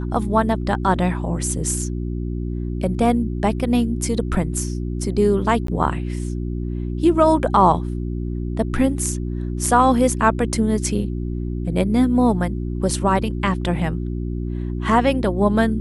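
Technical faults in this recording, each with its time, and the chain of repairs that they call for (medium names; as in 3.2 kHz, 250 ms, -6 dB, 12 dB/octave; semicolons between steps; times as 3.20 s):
hum 60 Hz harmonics 6 -25 dBFS
5.67–5.68 s: dropout 13 ms
9.66 s: dropout 2.2 ms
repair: de-hum 60 Hz, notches 6; interpolate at 5.67 s, 13 ms; interpolate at 9.66 s, 2.2 ms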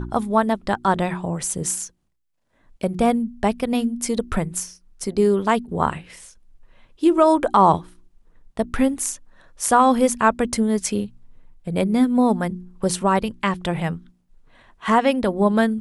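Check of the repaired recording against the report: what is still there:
nothing left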